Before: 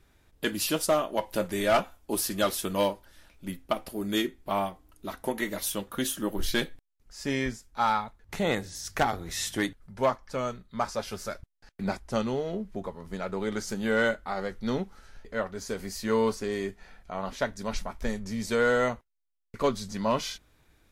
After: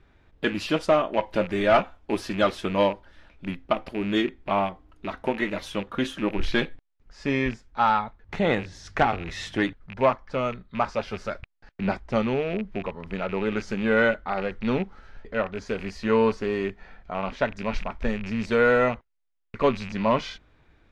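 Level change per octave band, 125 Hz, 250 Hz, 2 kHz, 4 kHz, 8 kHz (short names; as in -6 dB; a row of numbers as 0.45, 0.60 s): +4.5, +4.5, +4.5, 0.0, -13.0 dB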